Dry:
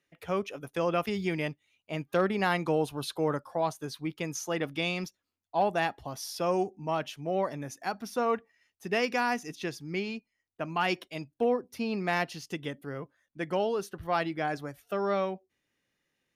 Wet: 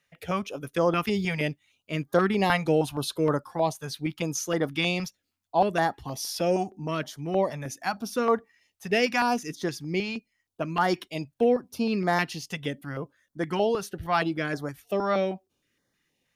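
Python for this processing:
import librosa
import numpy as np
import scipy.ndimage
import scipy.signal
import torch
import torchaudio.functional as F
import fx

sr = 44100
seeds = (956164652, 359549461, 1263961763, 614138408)

y = fx.filter_held_notch(x, sr, hz=6.4, low_hz=330.0, high_hz=2600.0)
y = y * 10.0 ** (6.0 / 20.0)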